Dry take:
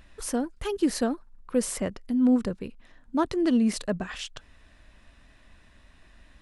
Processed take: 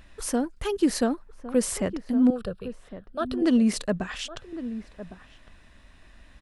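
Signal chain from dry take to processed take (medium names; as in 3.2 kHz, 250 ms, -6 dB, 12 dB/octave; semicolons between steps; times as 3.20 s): 2.30–3.42 s: static phaser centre 1.4 kHz, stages 8; echo from a far wall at 190 m, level -13 dB; trim +2 dB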